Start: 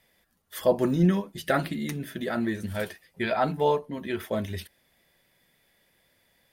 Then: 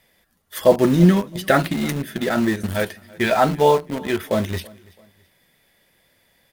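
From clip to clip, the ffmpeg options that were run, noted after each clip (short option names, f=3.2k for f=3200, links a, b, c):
-filter_complex "[0:a]asplit=2[a][b];[b]acrusher=bits=4:mix=0:aa=0.000001,volume=-8.5dB[c];[a][c]amix=inputs=2:normalize=0,aecho=1:1:332|664:0.0668|0.0241,volume=5.5dB"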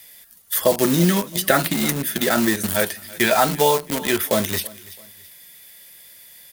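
-filter_complex "[0:a]crystalizer=i=8:c=0,acrossover=split=120|1500[a][b][c];[a]acompressor=threshold=-42dB:ratio=4[d];[b]acompressor=threshold=-14dB:ratio=4[e];[c]acompressor=threshold=-22dB:ratio=4[f];[d][e][f]amix=inputs=3:normalize=0"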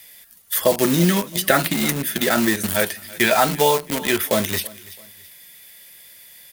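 -af "equalizer=f=2.4k:w=1.5:g=2.5"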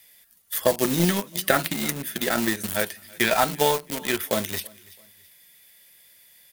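-af "aeval=exprs='0.891*(cos(1*acos(clip(val(0)/0.891,-1,1)))-cos(1*PI/2))+0.251*(cos(2*acos(clip(val(0)/0.891,-1,1)))-cos(2*PI/2))+0.0794*(cos(4*acos(clip(val(0)/0.891,-1,1)))-cos(4*PI/2))+0.0224*(cos(5*acos(clip(val(0)/0.891,-1,1)))-cos(5*PI/2))+0.0794*(cos(7*acos(clip(val(0)/0.891,-1,1)))-cos(7*PI/2))':c=same,volume=-3dB"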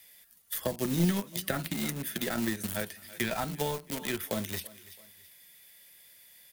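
-filter_complex "[0:a]acrossover=split=240[a][b];[b]acompressor=threshold=-30dB:ratio=4[c];[a][c]amix=inputs=2:normalize=0,volume=-2dB"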